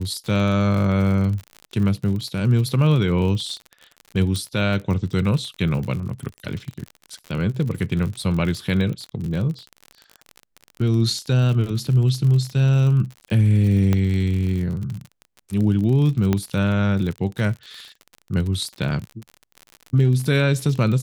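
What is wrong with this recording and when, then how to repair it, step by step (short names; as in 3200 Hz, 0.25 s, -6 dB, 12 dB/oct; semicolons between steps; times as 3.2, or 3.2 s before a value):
crackle 51/s -28 dBFS
4.36 pop -15 dBFS
13.93 pop -9 dBFS
16.33 pop -8 dBFS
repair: de-click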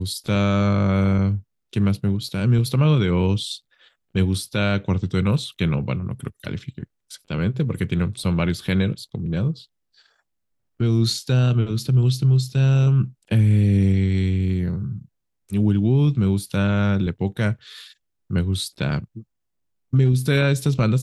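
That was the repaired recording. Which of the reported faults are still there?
4.36 pop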